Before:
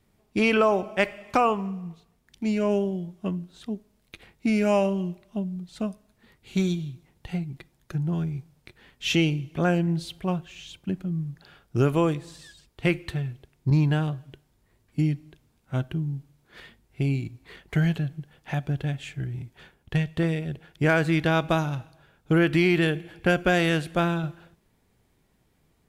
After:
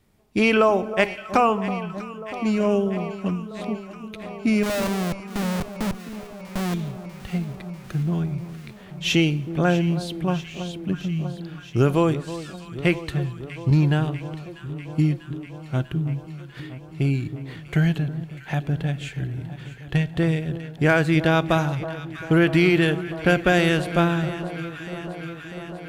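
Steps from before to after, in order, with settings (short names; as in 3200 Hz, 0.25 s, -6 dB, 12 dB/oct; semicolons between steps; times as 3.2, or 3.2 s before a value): 4.63–6.74 Schmitt trigger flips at -32 dBFS; echo with dull and thin repeats by turns 0.322 s, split 1200 Hz, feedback 86%, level -13 dB; gain +3 dB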